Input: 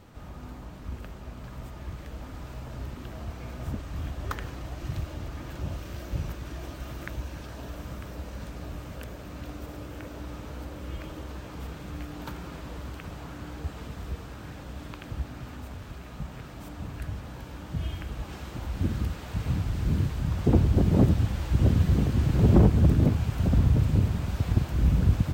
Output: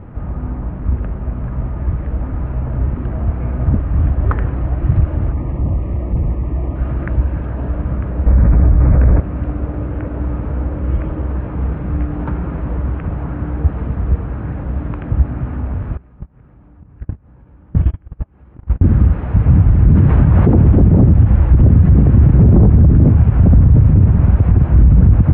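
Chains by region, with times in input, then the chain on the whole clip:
5.32–6.76 s: overload inside the chain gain 32 dB + Butterworth band-stop 1.5 kHz, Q 2.9 + distance through air 210 m
8.26–9.20 s: steep low-pass 2.5 kHz 72 dB/octave + bass shelf 95 Hz +10.5 dB + level flattener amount 100%
15.97–18.86 s: gate -31 dBFS, range -33 dB + upward compressor, threshold -49 dBFS + band-stop 660 Hz, Q 16
19.95–20.80 s: bass shelf 120 Hz -9 dB + level flattener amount 50%
whole clip: Bessel low-pass 1.4 kHz, order 6; bass shelf 230 Hz +8.5 dB; loudness maximiser +13.5 dB; trim -1 dB

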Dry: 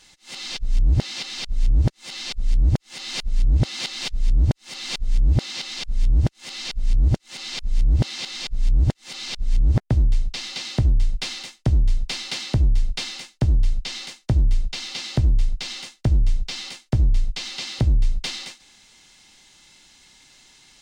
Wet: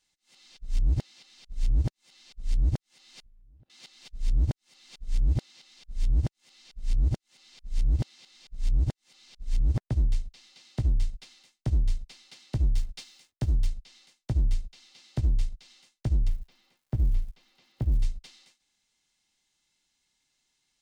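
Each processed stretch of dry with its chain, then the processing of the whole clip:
3.22–3.70 s: median filter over 41 samples + distance through air 170 m + compression 12:1, threshold -28 dBFS
12.67–13.67 s: treble shelf 4.1 kHz +6 dB + hysteresis with a dead band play -43 dBFS
16.27–18.01 s: low-pass 1.2 kHz 6 dB/octave + crackle 400 per s -42 dBFS
whole clip: treble shelf 6.7 kHz +5.5 dB; upward expansion 2.5:1, over -27 dBFS; trim -5 dB

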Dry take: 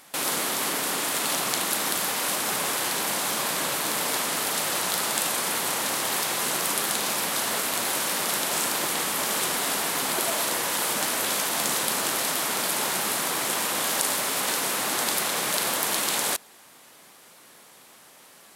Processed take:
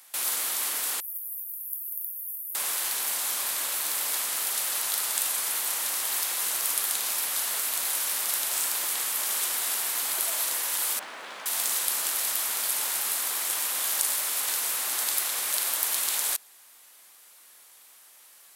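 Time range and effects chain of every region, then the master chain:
1.00–2.55 s: inverse Chebyshev band-stop 380–5300 Hz, stop band 60 dB + amplifier tone stack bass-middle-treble 10-0-10
10.99–11.46 s: Bessel low-pass 1.8 kHz + companded quantiser 8-bit
whole clip: high-pass 1.3 kHz 6 dB/octave; treble shelf 9.5 kHz +10.5 dB; trim -5 dB

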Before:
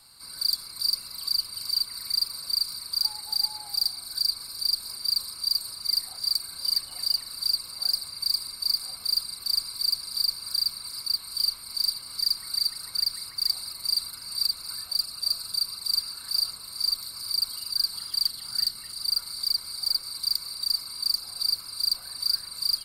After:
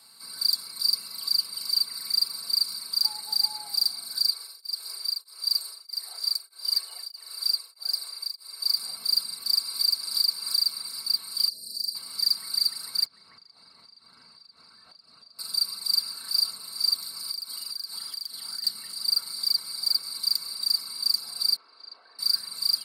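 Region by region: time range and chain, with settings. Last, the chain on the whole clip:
4.31–8.77 s: Chebyshev high-pass 340 Hz, order 8 + tremolo of two beating tones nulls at 1.6 Hz
9.53–10.82 s: high-pass 250 Hz 6 dB/octave + short-mantissa float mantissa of 8-bit + three bands compressed up and down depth 70%
11.48–11.95 s: compression 2:1, threshold -31 dBFS + brick-wall FIR band-stop 680–3900 Hz
13.05–15.39 s: compression 10:1, threshold -38 dBFS + tape spacing loss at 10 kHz 26 dB
17.31–18.64 s: bass shelf 120 Hz -10.5 dB + band-stop 2.8 kHz, Q 19 + compression 12:1, threshold -31 dBFS
21.56–22.19 s: high-pass 340 Hz 24 dB/octave + tape spacing loss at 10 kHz 44 dB
whole clip: high-pass 160 Hz 12 dB/octave; comb 4.5 ms, depth 40%

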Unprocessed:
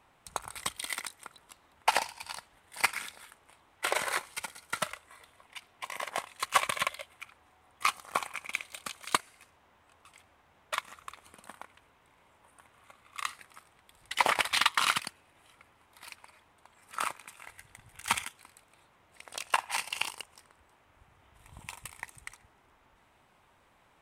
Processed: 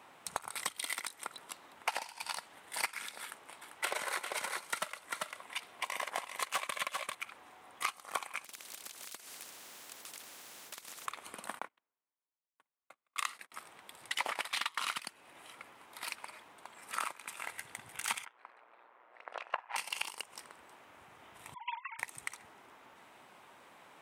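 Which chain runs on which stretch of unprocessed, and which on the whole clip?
3.22–7.15 s: high-pass 43 Hz + overload inside the chain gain 18 dB + delay 394 ms -8 dB
8.44–11.06 s: peaking EQ 7 kHz +12 dB 1.7 oct + compression 16:1, threshold -47 dBFS + spectrum-flattening compressor 4:1
11.59–13.52 s: gate -56 dBFS, range -30 dB + high-pass 170 Hz + three bands expanded up and down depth 70%
18.25–19.76 s: Butterworth band-pass 890 Hz, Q 0.61 + AM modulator 120 Hz, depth 55%
21.54–21.99 s: formants replaced by sine waves + treble shelf 2.2 kHz -8.5 dB
whole clip: high-pass 210 Hz 12 dB/octave; compression 5:1, threshold -42 dBFS; trim +7.5 dB

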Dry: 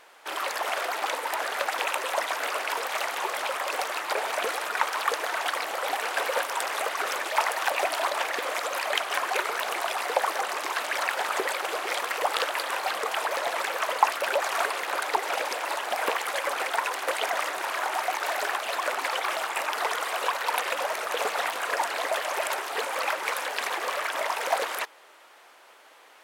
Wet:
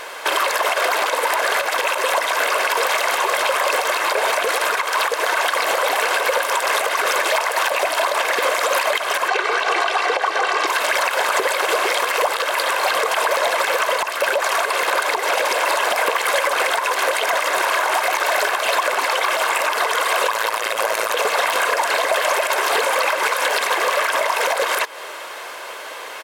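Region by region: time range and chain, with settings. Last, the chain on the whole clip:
9.28–10.67 s: band-pass 110–5200 Hz + comb 2.6 ms, depth 45%
20.27–21.14 s: AM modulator 110 Hz, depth 75% + peaking EQ 12 kHz +3.5 dB 1.4 oct
whole clip: comb 1.9 ms, depth 36%; compression 12:1, threshold -34 dBFS; loudness maximiser +28 dB; trim -7.5 dB

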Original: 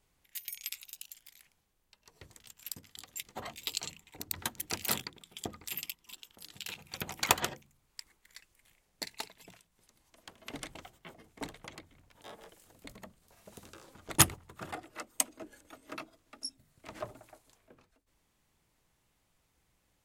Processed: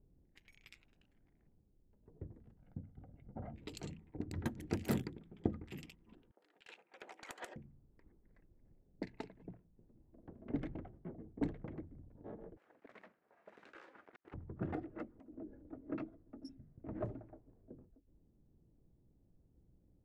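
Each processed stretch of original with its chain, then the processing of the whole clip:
2.58–3.56 s: distance through air 310 m + comb 1.4 ms, depth 58% + compression 2:1, threshold -46 dBFS
6.31–7.56 s: Bessel high-pass 750 Hz, order 4 + peaking EQ 9 kHz +8 dB 1.1 oct + compression 12:1, threshold -32 dBFS
12.57–14.34 s: block-companded coder 3-bit + high-pass 1.4 kHz + compressor with a negative ratio -55 dBFS
15.14–15.59 s: treble shelf 8 kHz -6.5 dB + compression 5:1, threshold -48 dBFS
whole clip: level-controlled noise filter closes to 630 Hz, open at -33 dBFS; FFT filter 320 Hz 0 dB, 1.1 kHz -19 dB, 1.7 kHz -15 dB, 3.5 kHz -25 dB; trim +8.5 dB

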